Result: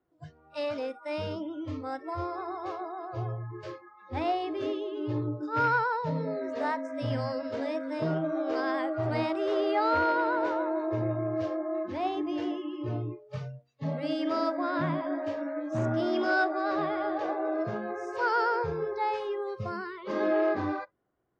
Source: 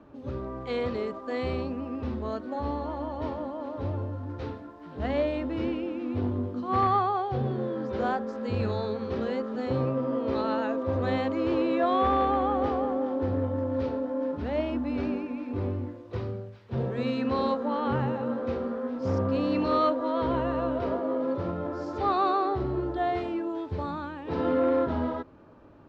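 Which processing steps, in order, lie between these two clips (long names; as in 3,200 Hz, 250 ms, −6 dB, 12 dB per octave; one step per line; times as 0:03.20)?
speed change +21%
noise reduction from a noise print of the clip's start 24 dB
level −1.5 dB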